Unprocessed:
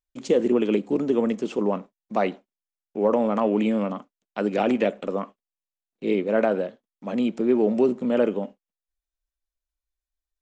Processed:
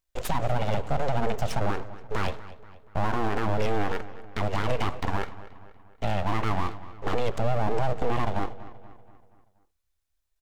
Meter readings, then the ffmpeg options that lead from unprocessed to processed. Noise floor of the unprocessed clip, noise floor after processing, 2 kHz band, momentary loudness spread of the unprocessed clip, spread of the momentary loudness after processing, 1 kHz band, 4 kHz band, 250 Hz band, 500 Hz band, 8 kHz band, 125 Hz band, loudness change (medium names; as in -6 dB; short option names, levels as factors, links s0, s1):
under -85 dBFS, -75 dBFS, +1.0 dB, 11 LU, 9 LU, +2.0 dB, +2.5 dB, -11.0 dB, -8.0 dB, no reading, +8.0 dB, -6.0 dB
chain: -filter_complex "[0:a]acompressor=threshold=0.0794:ratio=6,alimiter=limit=0.0708:level=0:latency=1:release=88,aeval=exprs='abs(val(0))':c=same,asplit=2[s0][s1];[s1]adelay=239,lowpass=f=4300:p=1,volume=0.158,asplit=2[s2][s3];[s3]adelay=239,lowpass=f=4300:p=1,volume=0.51,asplit=2[s4][s5];[s5]adelay=239,lowpass=f=4300:p=1,volume=0.51,asplit=2[s6][s7];[s7]adelay=239,lowpass=f=4300:p=1,volume=0.51,asplit=2[s8][s9];[s9]adelay=239,lowpass=f=4300:p=1,volume=0.51[s10];[s2][s4][s6][s8][s10]amix=inputs=5:normalize=0[s11];[s0][s11]amix=inputs=2:normalize=0,volume=2.51"